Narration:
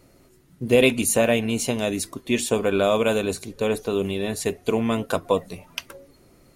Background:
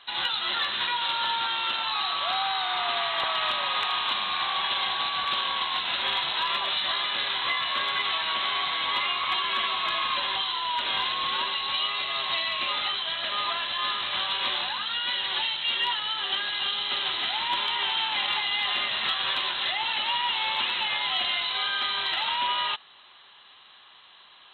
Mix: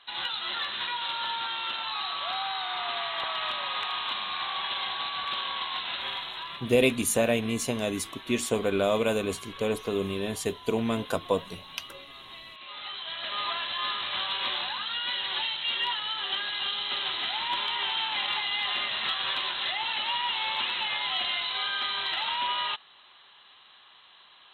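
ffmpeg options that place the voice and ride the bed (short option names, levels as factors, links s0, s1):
-filter_complex "[0:a]adelay=6000,volume=0.562[s0];[1:a]volume=3.35,afade=t=out:st=5.84:d=0.89:silence=0.223872,afade=t=in:st=12.62:d=0.85:silence=0.177828[s1];[s0][s1]amix=inputs=2:normalize=0"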